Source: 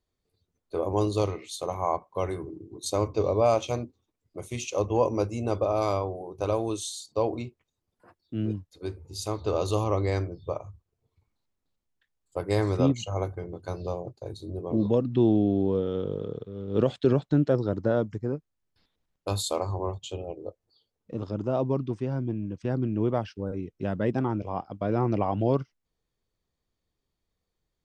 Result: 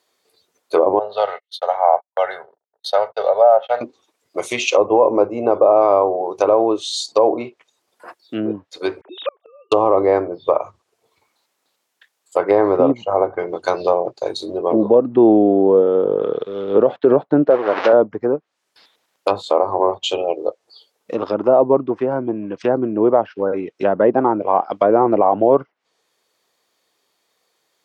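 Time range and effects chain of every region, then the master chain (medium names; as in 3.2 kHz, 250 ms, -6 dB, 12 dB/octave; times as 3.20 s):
0.99–3.81 s: gate -38 dBFS, range -49 dB + three-band isolator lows -17 dB, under 580 Hz, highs -19 dB, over 3.1 kHz + static phaser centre 1.6 kHz, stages 8
9.01–9.72 s: formants replaced by sine waves + inverted gate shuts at -29 dBFS, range -39 dB
17.50–17.93 s: one-bit delta coder 32 kbps, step -26.5 dBFS + high-pass 580 Hz 6 dB/octave + treble shelf 3.5 kHz -9.5 dB
whole clip: low-pass that closes with the level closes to 870 Hz, closed at -25 dBFS; high-pass 540 Hz 12 dB/octave; loudness maximiser +22.5 dB; trim -2 dB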